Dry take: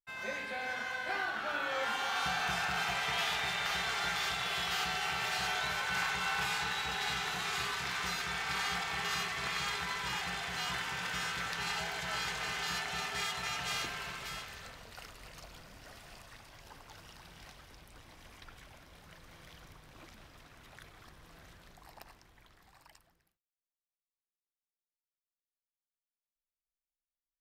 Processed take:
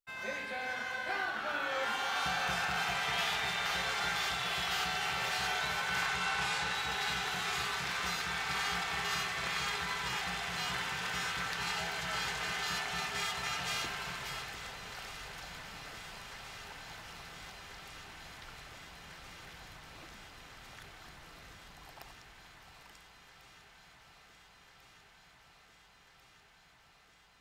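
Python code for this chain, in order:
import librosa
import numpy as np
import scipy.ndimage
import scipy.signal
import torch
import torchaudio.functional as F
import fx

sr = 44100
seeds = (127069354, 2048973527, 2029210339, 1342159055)

y = fx.lowpass(x, sr, hz=11000.0, slope=24, at=(6.06, 6.74))
y = fx.echo_alternate(y, sr, ms=697, hz=1200.0, feedback_pct=89, wet_db=-13.0)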